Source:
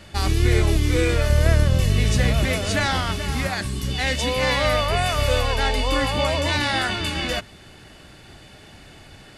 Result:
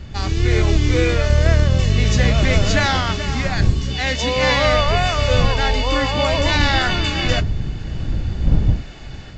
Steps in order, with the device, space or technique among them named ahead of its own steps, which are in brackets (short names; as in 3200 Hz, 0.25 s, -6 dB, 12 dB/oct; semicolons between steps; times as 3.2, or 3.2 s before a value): smartphone video outdoors (wind noise 88 Hz -26 dBFS; AGC gain up to 8.5 dB; gain -1 dB; AAC 48 kbps 16000 Hz)